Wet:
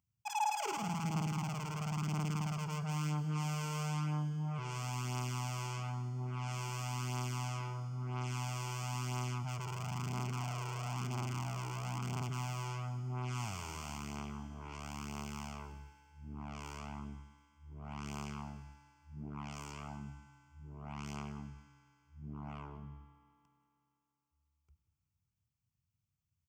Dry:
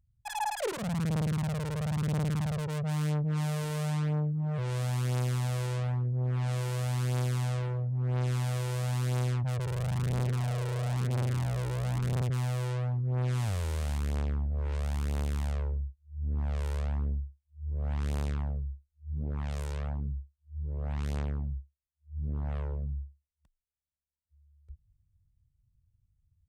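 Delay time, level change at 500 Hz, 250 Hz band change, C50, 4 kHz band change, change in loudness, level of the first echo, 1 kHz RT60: 185 ms, −11.0 dB, −6.0 dB, 9.5 dB, −2.5 dB, −7.5 dB, −19.5 dB, 2.8 s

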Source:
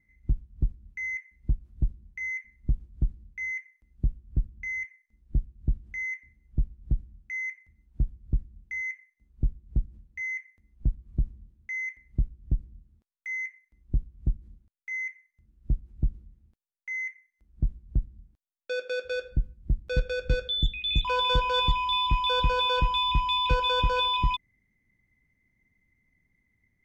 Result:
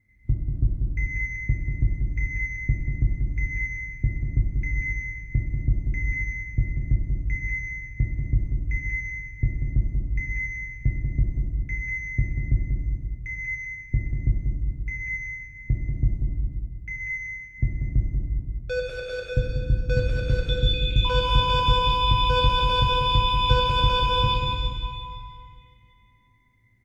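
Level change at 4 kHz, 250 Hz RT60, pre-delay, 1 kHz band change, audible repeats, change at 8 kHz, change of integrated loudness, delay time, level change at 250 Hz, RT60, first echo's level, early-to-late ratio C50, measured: +2.5 dB, 2.6 s, 4 ms, +3.5 dB, 1, can't be measured, +4.0 dB, 189 ms, +6.0 dB, 2.3 s, −4.5 dB, −1.5 dB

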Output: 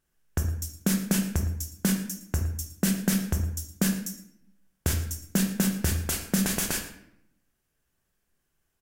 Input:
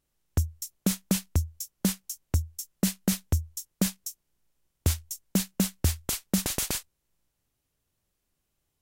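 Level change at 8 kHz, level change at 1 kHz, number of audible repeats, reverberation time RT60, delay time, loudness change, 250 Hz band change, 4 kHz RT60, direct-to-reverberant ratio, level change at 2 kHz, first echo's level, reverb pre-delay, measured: +1.0 dB, +3.0 dB, 1, 0.75 s, 113 ms, +1.5 dB, +3.0 dB, 0.55 s, 2.5 dB, +6.0 dB, −15.5 dB, 3 ms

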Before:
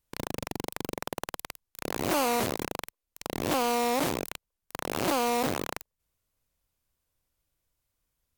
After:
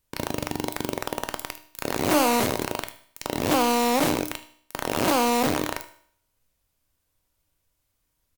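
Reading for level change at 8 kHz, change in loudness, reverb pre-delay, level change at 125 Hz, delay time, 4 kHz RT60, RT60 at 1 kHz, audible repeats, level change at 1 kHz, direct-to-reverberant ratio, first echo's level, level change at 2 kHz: +5.5 dB, +5.5 dB, 3 ms, +5.0 dB, 76 ms, 0.60 s, 0.60 s, 1, +5.5 dB, 8.5 dB, −19.0 dB, +5.5 dB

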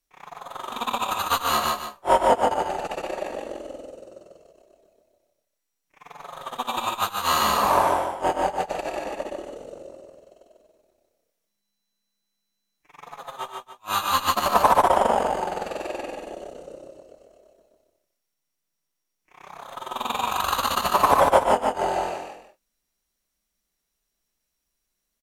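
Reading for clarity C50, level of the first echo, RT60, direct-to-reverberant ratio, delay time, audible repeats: no reverb audible, −19.0 dB, no reverb audible, no reverb audible, 80 ms, 3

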